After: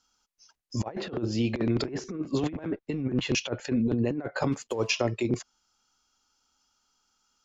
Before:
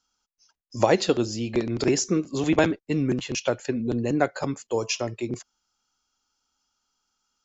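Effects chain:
0:04.52–0:04.96: one scale factor per block 5 bits
treble cut that deepens with the level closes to 1,700 Hz, closed at −19 dBFS
compressor whose output falls as the input rises −27 dBFS, ratio −0.5

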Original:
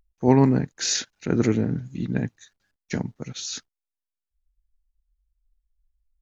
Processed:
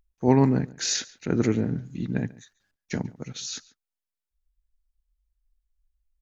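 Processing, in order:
slap from a distant wall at 24 metres, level −21 dB
level −2 dB

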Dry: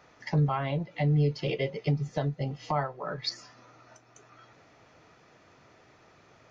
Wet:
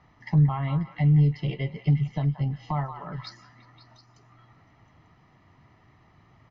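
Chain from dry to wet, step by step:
low-pass filter 4,000 Hz 12 dB per octave
low-shelf EQ 240 Hz +11 dB
comb filter 1 ms, depth 59%
on a send: echo through a band-pass that steps 179 ms, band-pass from 1,200 Hz, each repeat 0.7 octaves, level −6 dB
on the sum: level −5 dB

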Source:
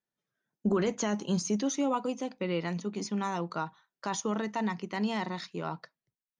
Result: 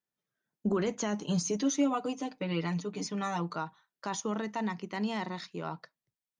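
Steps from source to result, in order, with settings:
0:01.22–0:03.56: comb filter 6.7 ms, depth 89%
level −2 dB

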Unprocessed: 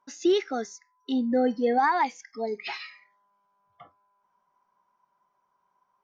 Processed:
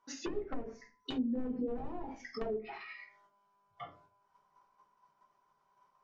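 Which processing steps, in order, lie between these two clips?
output level in coarse steps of 10 dB
high-shelf EQ 4,100 Hz +8 dB
wrap-around overflow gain 24 dB
downward compressor 4 to 1, threshold −41 dBFS, peak gain reduction 11 dB
low-pass filter 6,300 Hz
convolution reverb RT60 0.35 s, pre-delay 3 ms, DRR −4 dB
treble cut that deepens with the level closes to 460 Hz, closed at −32 dBFS
level +1.5 dB

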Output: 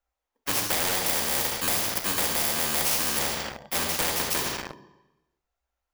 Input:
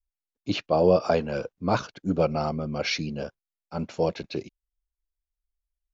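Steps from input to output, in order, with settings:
samples in bit-reversed order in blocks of 32 samples
0:01.06–0:03.19: high-shelf EQ 4,800 Hz +11.5 dB
downward compressor 6 to 1, threshold −27 dBFS, peak gain reduction 18 dB
parametric band 700 Hz +13.5 dB 1.6 octaves
mains-hum notches 50/100/150 Hz
convolution reverb RT60 1.1 s, pre-delay 3 ms, DRR 4.5 dB
leveller curve on the samples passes 3
every bin compressed towards the loudest bin 4 to 1
level −8 dB

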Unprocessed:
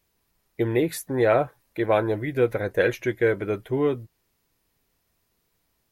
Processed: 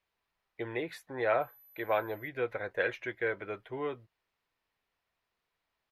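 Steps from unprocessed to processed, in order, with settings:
0:01.40–0:02.27: steady tone 12,000 Hz −33 dBFS
three-way crossover with the lows and the highs turned down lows −13 dB, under 580 Hz, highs −19 dB, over 4,000 Hz
downsampling to 32,000 Hz
level −5 dB

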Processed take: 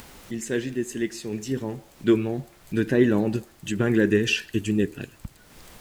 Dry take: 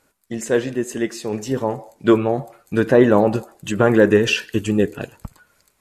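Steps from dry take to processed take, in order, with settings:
flat-topped bell 800 Hz −11.5 dB
background noise pink −52 dBFS
upward compression, threshold −32 dBFS
level −4 dB

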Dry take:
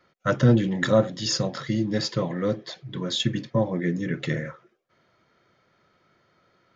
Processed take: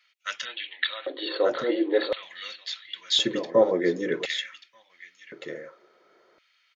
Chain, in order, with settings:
0:00.45–0:02.23: linear-phase brick-wall band-pass 250–4,500 Hz
single-tap delay 1,186 ms −11 dB
auto-filter high-pass square 0.47 Hz 420–2,600 Hz
level +1.5 dB

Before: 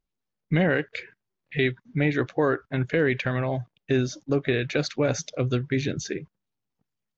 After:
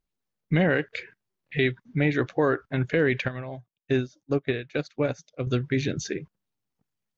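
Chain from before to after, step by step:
0:03.28–0:05.47: expander for the loud parts 2.5 to 1, over −33 dBFS

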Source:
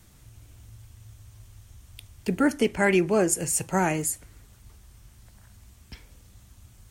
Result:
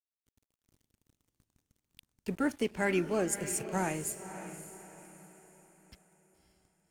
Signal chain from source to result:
dead-zone distortion −42.5 dBFS
feedback delay with all-pass diffusion 564 ms, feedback 40%, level −11 dB
level −8 dB

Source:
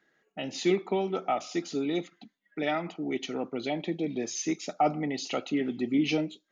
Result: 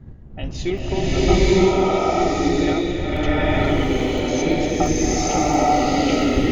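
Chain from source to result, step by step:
wind on the microphone 110 Hz −35 dBFS
transient designer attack +2 dB, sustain −3 dB
regular buffer underruns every 0.34 s, samples 256, zero, from 0:00.78
slow-attack reverb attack 920 ms, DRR −11.5 dB

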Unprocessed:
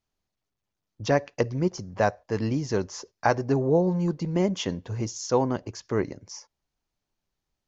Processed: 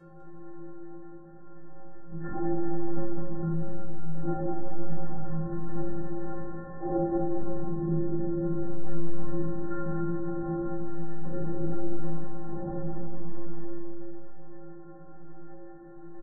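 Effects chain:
compressor on every frequency bin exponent 0.4
linear-prediction vocoder at 8 kHz whisper
stiff-string resonator 340 Hz, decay 0.6 s, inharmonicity 0.03
change of speed 0.473×
on a send: bouncing-ball delay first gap 200 ms, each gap 0.85×, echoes 5
on the sum: four-comb reverb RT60 1.7 s, combs from 31 ms, DRR 5 dB
in parallel at +1.5 dB: downward compressor, threshold −41 dBFS, peak gain reduction 19 dB
on the sum: parametric band 420 Hz +2.5 dB
level +3.5 dB

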